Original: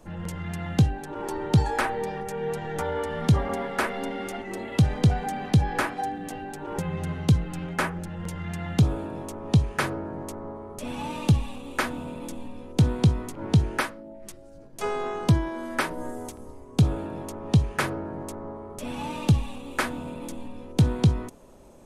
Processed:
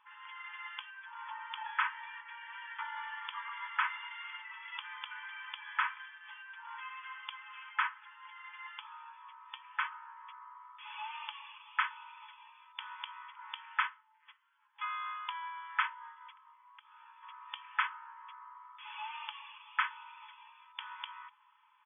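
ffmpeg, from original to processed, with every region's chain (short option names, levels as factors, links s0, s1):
-filter_complex "[0:a]asettb=1/sr,asplit=3[s0][s1][s2];[s0]atrim=end=8.104[s3];[s1]atrim=start=8.1:end=9.92,asetpts=PTS-STARTPTS,afade=t=in:d=0.004:c=qsin,afade=t=out:st=1.816:d=0.004:c=qsin,equalizer=f=200:w=0.46:g=11.5,flanger=delay=6.4:depth=1.4:regen=53:speed=1.1:shape=sinusoidal[s4];[s2]atrim=start=9.916[s5];[s3][s4]acrossfade=d=0.004:c1=hsin:c2=qsin[s6];[s6][s5]acrossfade=d=0.004:c1=qsin:c2=hsin,asettb=1/sr,asplit=3[s7][s8][s9];[s7]atrim=end=16.514[s10];[s8]atrim=start=16.51:end=17.23,asetpts=PTS-STARTPTS,afade=t=in:d=0.004:c=qsin,afade=t=out:st=0.716:d=0.004:c=qsin,acompressor=threshold=0.0112:ratio=3:attack=3.2:release=140:knee=1:detection=peak,aeval=exprs='(mod(23.7*val(0)+1,2)-1)/23.7':c=same[s11];[s9]atrim=start=17.226[s12];[s10][s11]acrossfade=d=0.004:c1=hsin:c2=qsin[s13];[s13][s12]acrossfade=d=0.004:c1=qsin:c2=hsin,afftfilt=real='re*between(b*sr/4096,840,3500)':imag='im*between(b*sr/4096,840,3500)':win_size=4096:overlap=0.75,aecho=1:1:3.9:0.4,volume=0.631"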